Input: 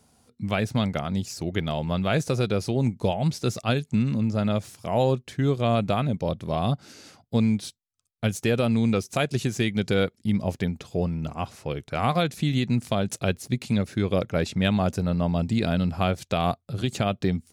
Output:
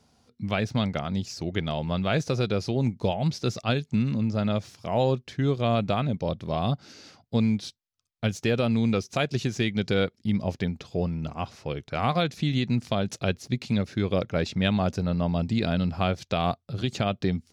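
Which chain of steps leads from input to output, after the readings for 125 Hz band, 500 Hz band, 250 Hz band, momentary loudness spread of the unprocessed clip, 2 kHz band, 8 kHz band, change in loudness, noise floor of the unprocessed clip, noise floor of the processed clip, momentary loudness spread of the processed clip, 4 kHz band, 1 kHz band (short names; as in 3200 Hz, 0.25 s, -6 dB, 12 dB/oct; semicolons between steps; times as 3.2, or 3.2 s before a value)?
-1.5 dB, -1.5 dB, -1.5 dB, 6 LU, -1.0 dB, -4.5 dB, -1.5 dB, -69 dBFS, -71 dBFS, 6 LU, 0.0 dB, -1.5 dB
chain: resonant high shelf 7000 Hz -8.5 dB, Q 1.5; gain -1.5 dB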